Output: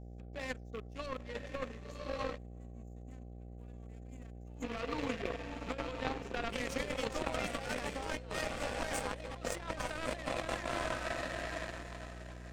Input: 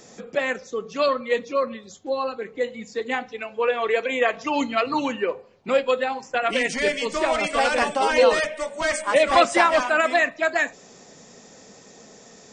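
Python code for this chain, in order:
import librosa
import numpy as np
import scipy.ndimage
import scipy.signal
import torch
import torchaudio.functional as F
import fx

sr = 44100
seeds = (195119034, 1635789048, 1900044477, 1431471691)

y = fx.rattle_buzz(x, sr, strikes_db=-37.0, level_db=-26.0)
y = fx.high_shelf(y, sr, hz=7700.0, db=6.0)
y = fx.echo_diffused(y, sr, ms=1075, feedback_pct=42, wet_db=-4)
y = fx.spec_box(y, sr, start_s=2.37, length_s=2.26, low_hz=260.0, high_hz=6200.0, gain_db=-18)
y = fx.over_compress(y, sr, threshold_db=-22.0, ratio=-1.0)
y = fx.power_curve(y, sr, exponent=2.0)
y = fx.dmg_buzz(y, sr, base_hz=60.0, harmonics=13, level_db=-48.0, tilt_db=-4, odd_only=False)
y = fx.low_shelf(y, sr, hz=240.0, db=10.5)
y = y * librosa.db_to_amplitude(-8.5)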